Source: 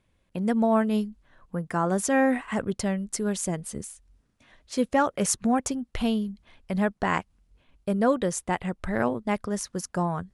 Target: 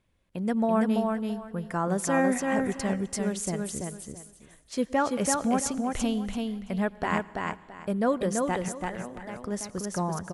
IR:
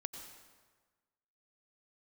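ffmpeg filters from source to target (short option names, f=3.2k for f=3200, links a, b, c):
-filter_complex "[0:a]asettb=1/sr,asplit=3[a][b][c];[a]atrim=end=8.684[d];[b]atrim=start=8.68:end=9.36,asetpts=PTS-STARTPTS,afade=t=in:d=0.004:c=qsin,afade=t=out:st=0.676:d=0.004:c=qsin,acrossover=split=390|3300[e][f][g];[e]acompressor=threshold=-41dB:ratio=4[h];[f]acompressor=threshold=-38dB:ratio=4[i];[g]acompressor=threshold=-60dB:ratio=4[j];[h][i][j]amix=inputs=3:normalize=0[k];[c]atrim=start=9.356[l];[d][k]acrossfade=d=0.004:c1=hsin:c2=qsin[m];[m][l]acrossfade=d=0.004:c1=qsin:c2=hsin,aecho=1:1:334|668|1002:0.668|0.147|0.0323,asplit=2[n][o];[1:a]atrim=start_sample=2205[p];[o][p]afir=irnorm=-1:irlink=0,volume=-11dB[q];[n][q]amix=inputs=2:normalize=0,volume=-4.5dB"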